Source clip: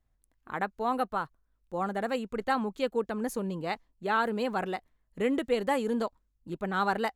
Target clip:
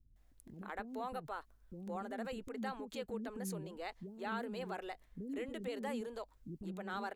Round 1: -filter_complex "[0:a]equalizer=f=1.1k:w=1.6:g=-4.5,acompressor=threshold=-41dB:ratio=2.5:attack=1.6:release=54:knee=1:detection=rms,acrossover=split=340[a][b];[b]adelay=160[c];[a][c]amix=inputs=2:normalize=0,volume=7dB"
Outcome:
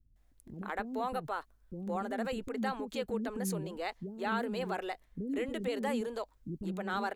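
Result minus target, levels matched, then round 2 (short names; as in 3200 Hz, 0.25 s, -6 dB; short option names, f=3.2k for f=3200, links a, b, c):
compressor: peak gain reduction -7 dB
-filter_complex "[0:a]equalizer=f=1.1k:w=1.6:g=-4.5,acompressor=threshold=-52.5dB:ratio=2.5:attack=1.6:release=54:knee=1:detection=rms,acrossover=split=340[a][b];[b]adelay=160[c];[a][c]amix=inputs=2:normalize=0,volume=7dB"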